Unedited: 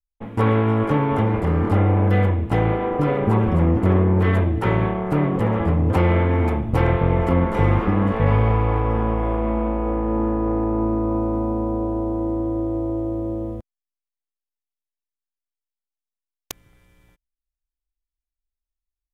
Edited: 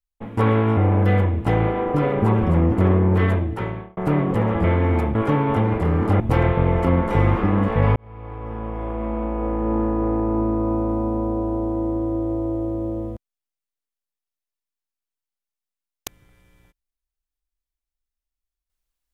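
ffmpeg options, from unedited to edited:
-filter_complex "[0:a]asplit=7[s0][s1][s2][s3][s4][s5][s6];[s0]atrim=end=0.772[s7];[s1]atrim=start=1.818:end=5.02,asetpts=PTS-STARTPTS,afade=t=out:st=2.462:d=0.74[s8];[s2]atrim=start=5.02:end=5.692,asetpts=PTS-STARTPTS,afade=t=in:d=0.004:c=hsin[s9];[s3]atrim=start=6.128:end=6.642[s10];[s4]atrim=start=0.768:end=1.822[s11];[s5]atrim=start=6.638:end=8.4,asetpts=PTS-STARTPTS,afade=t=out:st=1.758:d=0.004:c=hsin[s12];[s6]atrim=start=8.4,asetpts=PTS-STARTPTS,afade=t=in:d=1.77[s13];[s8][s9]concat=n=2:v=0:a=1[s14];[s7][s14]acrossfade=d=0.004:c1=hsin:c2=hsin[s15];[s15][s10]acrossfade=d=0.004:c1=hsin:c2=hsin[s16];[s16][s11]acrossfade=d=0.004:c1=hsin:c2=hsin[s17];[s12][s13]concat=n=2:v=0:a=1[s18];[s17][s18]acrossfade=d=0.004:c1=hsin:c2=hsin"

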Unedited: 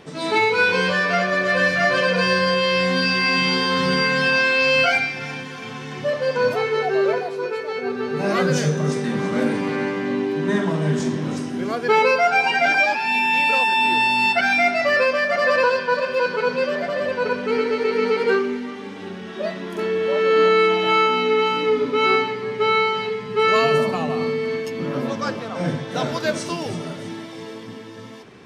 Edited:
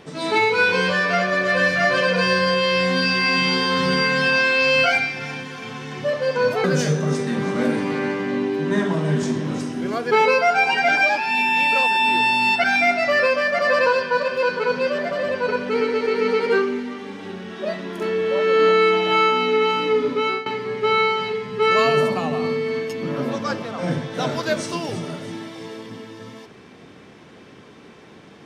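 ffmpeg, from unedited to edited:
-filter_complex "[0:a]asplit=3[s0][s1][s2];[s0]atrim=end=6.642[s3];[s1]atrim=start=8.408:end=22.23,asetpts=PTS-STARTPTS,afade=t=out:st=13.502:d=0.32:silence=0.125893[s4];[s2]atrim=start=22.23,asetpts=PTS-STARTPTS,afade=t=in:d=0.004:c=hsin:silence=0.125893[s5];[s4][s5]concat=n=2:v=0:a=1[s6];[s3][s6]acrossfade=d=0.004:c1=hsin:c2=hsin"

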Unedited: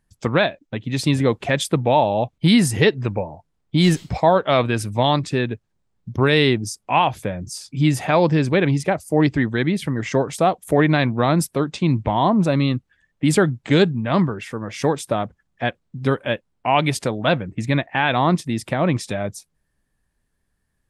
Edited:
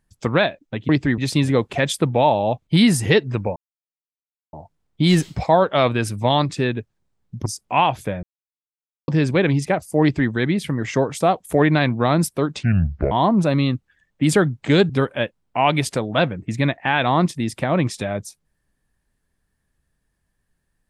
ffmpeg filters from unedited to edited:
-filter_complex "[0:a]asplit=10[s0][s1][s2][s3][s4][s5][s6][s7][s8][s9];[s0]atrim=end=0.892[s10];[s1]atrim=start=9.198:end=9.492[s11];[s2]atrim=start=0.888:end=3.27,asetpts=PTS-STARTPTS,afade=t=out:st=2.378:d=0.004:c=hsin,apad=pad_dur=0.97[s12];[s3]atrim=start=3.27:end=6.202,asetpts=PTS-STARTPTS,afade=t=in:d=0.004:c=hsin[s13];[s4]atrim=start=6.638:end=7.41,asetpts=PTS-STARTPTS,afade=t=out:st=0.768:d=0.004:c=hsin[s14];[s5]atrim=start=7.41:end=8.26,asetpts=PTS-STARTPTS,volume=0[s15];[s6]atrim=start=8.26:end=11.814,asetpts=PTS-STARTPTS,afade=t=in:d=0.004:c=hsin[s16];[s7]atrim=start=11.81:end=12.13,asetpts=PTS-STARTPTS,asetrate=29106,aresample=44100[s17];[s8]atrim=start=12.126:end=13.912[s18];[s9]atrim=start=15.988[s19];[s10][s11]acrossfade=d=0.004:c1=hsin:c2=hsin[s20];[s12][s13]concat=n=2:v=0:a=1[s21];[s20][s21]acrossfade=d=0.004:c1=hsin:c2=hsin[s22];[s14][s15][s16]concat=n=3:v=0:a=1[s23];[s22][s23]acrossfade=d=0.004:c1=hsin:c2=hsin[s24];[s24][s17]acrossfade=d=0.004:c1=hsin:c2=hsin[s25];[s25][s18]acrossfade=d=0.004:c1=hsin:c2=hsin[s26];[s26][s19]acrossfade=d=0.004:c1=hsin:c2=hsin"

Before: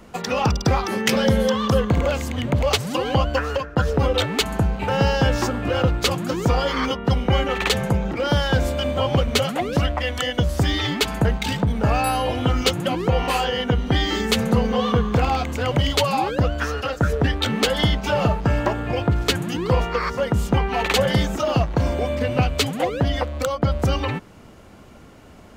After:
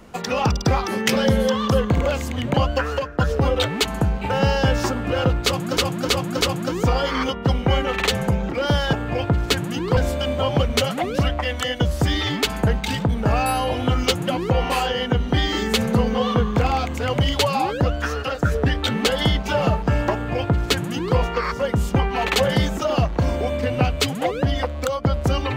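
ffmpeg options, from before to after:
-filter_complex "[0:a]asplit=7[s0][s1][s2][s3][s4][s5][s6];[s0]atrim=end=2.542[s7];[s1]atrim=start=3.118:end=6.352[s8];[s2]atrim=start=6.028:end=6.352[s9];[s3]atrim=start=6.028:end=6.352[s10];[s4]atrim=start=6.028:end=8.552[s11];[s5]atrim=start=18.708:end=19.752[s12];[s6]atrim=start=8.548[s13];[s7][s8]acrossfade=d=0.004:c1=hsin:c2=hsin[s14];[s14][s9]acrossfade=d=0.004:c1=hsin:c2=hsin[s15];[s15][s10]acrossfade=d=0.004:c1=hsin:c2=hsin[s16];[s16][s11]acrossfade=d=0.004:c1=hsin:c2=hsin[s17];[s17][s12]acrossfade=d=0.004:c1=hsin:c2=hsin[s18];[s18][s13]acrossfade=d=0.004:c1=hsin:c2=hsin"

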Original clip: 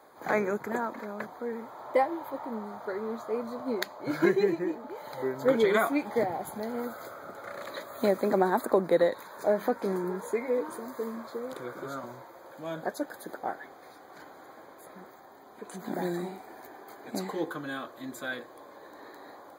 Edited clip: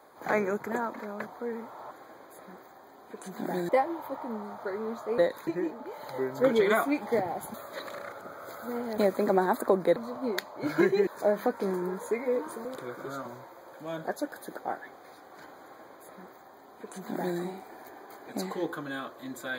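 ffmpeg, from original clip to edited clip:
-filter_complex "[0:a]asplit=10[s0][s1][s2][s3][s4][s5][s6][s7][s8][s9];[s0]atrim=end=1.912[s10];[s1]atrim=start=14.388:end=16.172[s11];[s2]atrim=start=1.908:end=3.402[s12];[s3]atrim=start=8.998:end=9.292[s13];[s4]atrim=start=4.508:end=6.582[s14];[s5]atrim=start=6.578:end=8.022,asetpts=PTS-STARTPTS,areverse[s15];[s6]atrim=start=8.018:end=9.002[s16];[s7]atrim=start=3.398:end=4.512[s17];[s8]atrim=start=9.288:end=10.872[s18];[s9]atrim=start=11.428[s19];[s10][s11]acrossfade=d=0.004:c1=hsin:c2=hsin[s20];[s20][s12]acrossfade=d=0.004:c1=hsin:c2=hsin[s21];[s21][s13]acrossfade=d=0.004:c1=hsin:c2=hsin[s22];[s22][s14]acrossfade=d=0.004:c1=hsin:c2=hsin[s23];[s23][s15]acrossfade=d=0.004:c1=hsin:c2=hsin[s24];[s24][s16]acrossfade=d=0.004:c1=hsin:c2=hsin[s25];[s25][s17]acrossfade=d=0.004:c1=hsin:c2=hsin[s26];[s26][s18]acrossfade=d=0.004:c1=hsin:c2=hsin[s27];[s27][s19]acrossfade=d=0.004:c1=hsin:c2=hsin"

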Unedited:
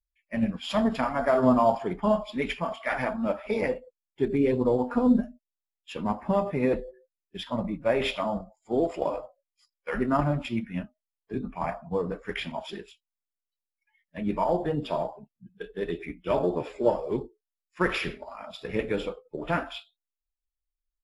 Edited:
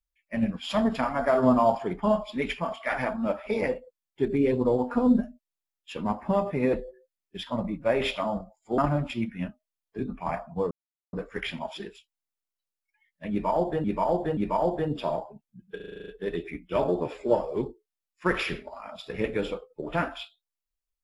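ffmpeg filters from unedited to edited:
-filter_complex "[0:a]asplit=13[s0][s1][s2][s3][s4][s5][s6][s7][s8][s9][s10][s11][s12];[s0]atrim=end=8.782[s13];[s1]atrim=start=10.128:end=12.06,asetpts=PTS-STARTPTS,afade=t=out:st=1.928:d=0.004:c=hsin,apad=pad_dur=0.42[s14];[s2]atrim=start=12.06:end=14.772,asetpts=PTS-STARTPTS,afade=t=in:d=0.004:c=hsin[s15];[s3]atrim=start=14.238:end=14.772[s16];[s4]atrim=start=14.238:end=15.672[s17];[s5]atrim=start=15.628:end=15.672[s18];[s6]atrim=start=15.628:end=15.672[s19];[s7]atrim=start=15.628:end=15.672[s20];[s8]atrim=start=15.628:end=15.672[s21];[s9]atrim=start=15.628:end=15.672[s22];[s10]atrim=start=15.628:end=15.672[s23];[s11]atrim=start=15.628:end=15.672[s24];[s12]atrim=start=15.628[s25];[s14][s15]concat=n=2:v=0:a=1[s26];[s13][s26]acrossfade=d=0.004:c1=hsin:c2=hsin[s27];[s27][s16]acrossfade=d=0.004:c1=hsin:c2=hsin[s28];[s28][s17]acrossfade=d=0.004:c1=hsin:c2=hsin[s29];[s29][s18]acrossfade=d=0.004:c1=hsin:c2=hsin[s30];[s30][s19]acrossfade=d=0.004:c1=hsin:c2=hsin[s31];[s31][s20]acrossfade=d=0.004:c1=hsin:c2=hsin[s32];[s32][s21]acrossfade=d=0.004:c1=hsin:c2=hsin[s33];[s33][s22]acrossfade=d=0.004:c1=hsin:c2=hsin[s34];[s34][s23]acrossfade=d=0.004:c1=hsin:c2=hsin[s35];[s35][s24]acrossfade=d=0.004:c1=hsin:c2=hsin[s36];[s36][s25]acrossfade=d=0.004:c1=hsin:c2=hsin"

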